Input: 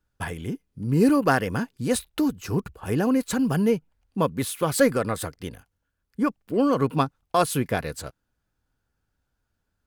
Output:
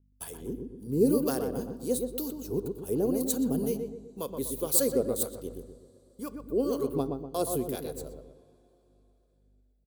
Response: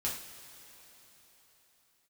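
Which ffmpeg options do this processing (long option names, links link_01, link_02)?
-filter_complex "[0:a]aemphasis=mode=production:type=riaa,aeval=exprs='val(0)+0.00562*(sin(2*PI*50*n/s)+sin(2*PI*2*50*n/s)/2+sin(2*PI*3*50*n/s)/3+sin(2*PI*4*50*n/s)/4+sin(2*PI*5*50*n/s)/5)':channel_layout=same,agate=range=-17dB:threshold=-42dB:ratio=16:detection=peak,firequalizer=gain_entry='entry(160,0);entry(410,5);entry(780,-9);entry(1800,-23);entry(3800,-8)':delay=0.05:min_phase=1,acrossover=split=940[link_01][link_02];[link_01]aeval=exprs='val(0)*(1-0.7/2+0.7/2*cos(2*PI*2*n/s))':channel_layout=same[link_03];[link_02]aeval=exprs='val(0)*(1-0.7/2-0.7/2*cos(2*PI*2*n/s))':channel_layout=same[link_04];[link_03][link_04]amix=inputs=2:normalize=0,bandreject=frequency=5100:width=12,asplit=2[link_05][link_06];[link_06]adelay=123,lowpass=frequency=1200:poles=1,volume=-4dB,asplit=2[link_07][link_08];[link_08]adelay=123,lowpass=frequency=1200:poles=1,volume=0.46,asplit=2[link_09][link_10];[link_10]adelay=123,lowpass=frequency=1200:poles=1,volume=0.46,asplit=2[link_11][link_12];[link_12]adelay=123,lowpass=frequency=1200:poles=1,volume=0.46,asplit=2[link_13][link_14];[link_14]adelay=123,lowpass=frequency=1200:poles=1,volume=0.46,asplit=2[link_15][link_16];[link_16]adelay=123,lowpass=frequency=1200:poles=1,volume=0.46[link_17];[link_05][link_07][link_09][link_11][link_13][link_15][link_17]amix=inputs=7:normalize=0,asplit=2[link_18][link_19];[1:a]atrim=start_sample=2205,lowpass=6100[link_20];[link_19][link_20]afir=irnorm=-1:irlink=0,volume=-17dB[link_21];[link_18][link_21]amix=inputs=2:normalize=0,volume=-2dB"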